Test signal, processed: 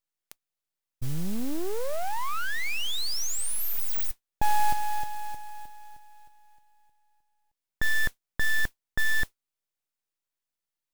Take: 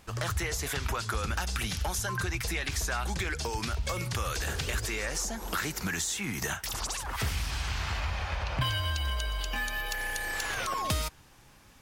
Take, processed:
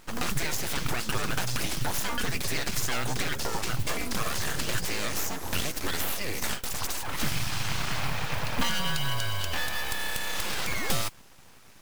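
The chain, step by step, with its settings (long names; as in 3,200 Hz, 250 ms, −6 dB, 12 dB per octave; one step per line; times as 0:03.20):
noise that follows the level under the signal 19 dB
full-wave rectification
level +5 dB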